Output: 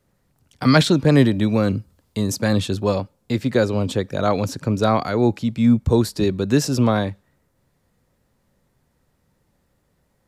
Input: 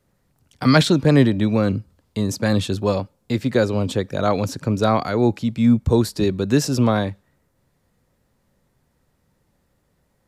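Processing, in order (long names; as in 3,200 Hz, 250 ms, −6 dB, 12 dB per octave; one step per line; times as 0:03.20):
0:01.12–0:02.46: high-shelf EQ 6,500 Hz +6 dB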